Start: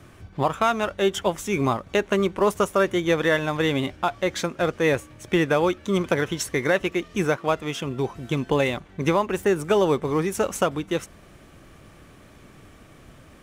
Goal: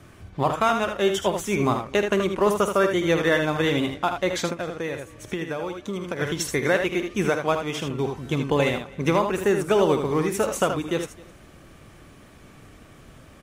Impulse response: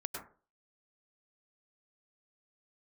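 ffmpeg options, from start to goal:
-filter_complex "[0:a]asplit=2[a][b];[b]aecho=0:1:49|78:0.2|0.447[c];[a][c]amix=inputs=2:normalize=0,asplit=3[d][e][f];[d]afade=t=out:st=4.53:d=0.02[g];[e]acompressor=threshold=-27dB:ratio=5,afade=t=in:st=4.53:d=0.02,afade=t=out:st=6.2:d=0.02[h];[f]afade=t=in:st=6.2:d=0.02[i];[g][h][i]amix=inputs=3:normalize=0,asplit=2[j][k];[k]aecho=0:1:260:0.0708[l];[j][l]amix=inputs=2:normalize=0" -ar 44100 -c:a libmp3lame -b:a 64k

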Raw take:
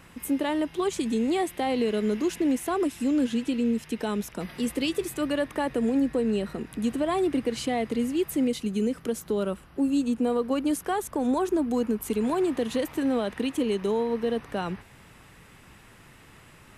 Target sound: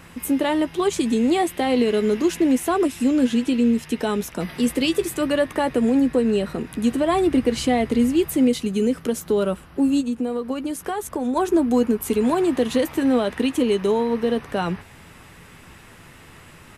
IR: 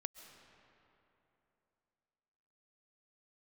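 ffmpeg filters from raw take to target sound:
-filter_complex "[0:a]asettb=1/sr,asplit=3[a][b][c];[a]atrim=end=7.124[d];[b]atrim=start=7.12:end=8.3,asetpts=PTS-STARTPTS,afade=t=in:d=0.004:c=qsin,afade=t=out:st=1.176:d=0.004:c=qsin,lowshelf=f=110:g=8.5[e];[c]atrim=start=8.296[f];[d][e]acrossfade=d=0.004:c1=hsin:c2=qsin[g];[g][f]acrossfade=d=0.004:c1=qsin:c2=hsin,asplit=3[h][i][j];[h]afade=t=out:st=10:d=0.02[k];[i]acompressor=threshold=-29dB:ratio=6,afade=t=in:st=10:d=0.02,afade=t=out:st=11.35:d=0.02[l];[j]afade=t=in:st=11.35:d=0.02[m];[k][l][m]amix=inputs=3:normalize=0,asplit=2[n][o];[o]adelay=12,volume=-11dB[p];[n][p]amix=inputs=2:normalize=0,volume=6dB"

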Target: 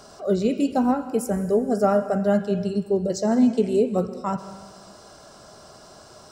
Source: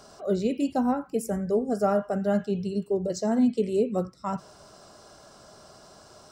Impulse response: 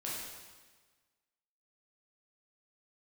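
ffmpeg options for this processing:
-filter_complex "[0:a]asplit=2[a][b];[1:a]atrim=start_sample=2205,adelay=127[c];[b][c]afir=irnorm=-1:irlink=0,volume=-15dB[d];[a][d]amix=inputs=2:normalize=0,volume=4dB"

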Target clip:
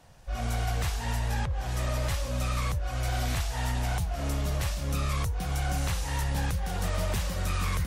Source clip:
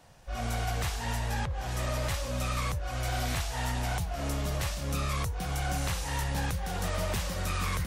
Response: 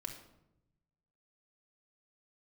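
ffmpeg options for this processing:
-af "lowshelf=f=110:g=5.5" -ar 48000 -c:a libmp3lame -b:a 80k

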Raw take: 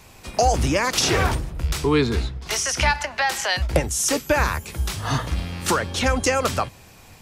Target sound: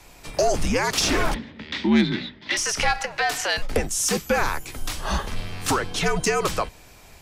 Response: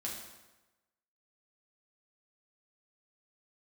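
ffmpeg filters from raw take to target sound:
-filter_complex "[0:a]asettb=1/sr,asplit=3[a][b][c];[a]atrim=end=1.344[d];[b]atrim=start=1.34:end=2.57,asetpts=PTS-STARTPTS,afade=t=in:d=0.004:c=qsin,afade=t=out:st=1.226:d=0.004:c=qsin,highpass=f=220:w=0.5412,highpass=f=220:w=1.3066,equalizer=f=300:t=q:w=4:g=8,equalizer=f=490:t=q:w=4:g=-3,equalizer=f=790:t=q:w=4:g=-8,equalizer=f=1.3k:t=q:w=4:g=-7,equalizer=f=2k:t=q:w=4:g=9,equalizer=f=3.6k:t=q:w=4:g=7,lowpass=f=4.4k:w=0.5412,lowpass=f=4.4k:w=1.3066[e];[c]atrim=start=2.566[f];[d][e]acrossfade=d=0.004:c1=hsin:c2=qsin[g];[g][f]acrossfade=d=0.004:c1=qsin:c2=hsin,afreqshift=-77,acontrast=90,volume=-8dB"

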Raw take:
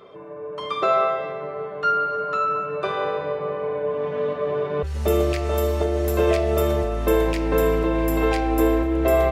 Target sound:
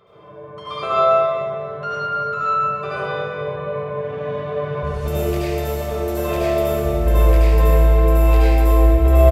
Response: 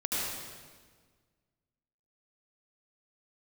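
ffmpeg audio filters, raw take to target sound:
-filter_complex "[0:a]firequalizer=gain_entry='entry(130,0);entry(260,-14);entry(550,-7)':delay=0.05:min_phase=1[a];[1:a]atrim=start_sample=2205[b];[a][b]afir=irnorm=-1:irlink=0,volume=1dB"

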